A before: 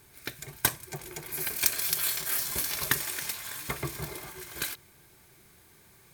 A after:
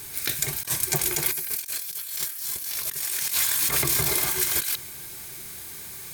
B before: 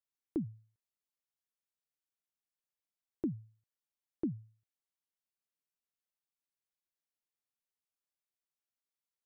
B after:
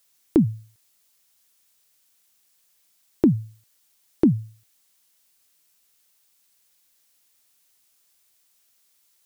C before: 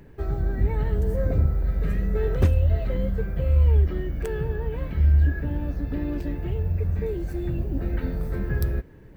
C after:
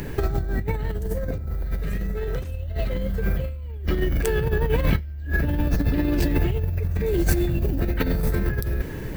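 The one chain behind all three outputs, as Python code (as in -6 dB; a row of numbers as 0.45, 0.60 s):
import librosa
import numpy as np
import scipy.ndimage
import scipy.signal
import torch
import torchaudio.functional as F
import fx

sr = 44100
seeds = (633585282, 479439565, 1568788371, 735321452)

y = fx.high_shelf(x, sr, hz=2700.0, db=11.5)
y = fx.over_compress(y, sr, threshold_db=-32.0, ratio=-1.0)
y = y * 10.0 ** (-6 / 20.0) / np.max(np.abs(y))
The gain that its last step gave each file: +3.5, +18.5, +8.0 dB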